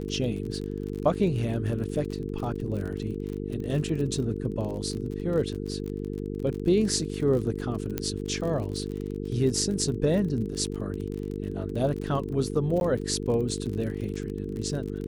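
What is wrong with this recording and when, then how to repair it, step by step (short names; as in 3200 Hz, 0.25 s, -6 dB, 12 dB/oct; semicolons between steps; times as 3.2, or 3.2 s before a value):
buzz 50 Hz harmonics 9 -33 dBFS
crackle 38/s -33 dBFS
7.98 pop -13 dBFS
12.8–12.81 gap 11 ms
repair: de-click; de-hum 50 Hz, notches 9; interpolate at 12.8, 11 ms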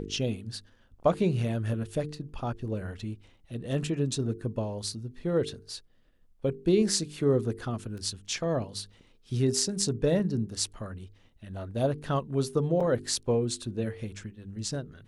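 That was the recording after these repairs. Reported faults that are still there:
7.98 pop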